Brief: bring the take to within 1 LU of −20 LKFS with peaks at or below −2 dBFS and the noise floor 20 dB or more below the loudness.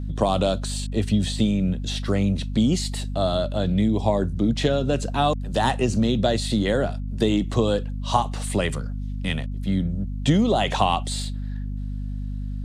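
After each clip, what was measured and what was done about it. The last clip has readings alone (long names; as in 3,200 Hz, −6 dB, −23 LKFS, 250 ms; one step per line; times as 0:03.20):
mains hum 50 Hz; hum harmonics up to 250 Hz; level of the hum −26 dBFS; integrated loudness −24.0 LKFS; sample peak −4.5 dBFS; target loudness −20.0 LKFS
→ mains-hum notches 50/100/150/200/250 Hz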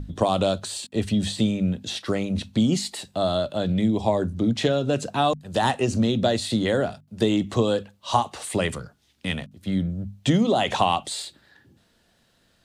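mains hum none found; integrated loudness −24.5 LKFS; sample peak −5.5 dBFS; target loudness −20.0 LKFS
→ level +4.5 dB
brickwall limiter −2 dBFS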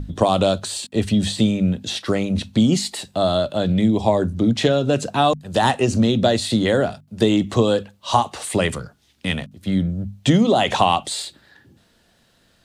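integrated loudness −20.0 LKFS; sample peak −2.0 dBFS; background noise floor −60 dBFS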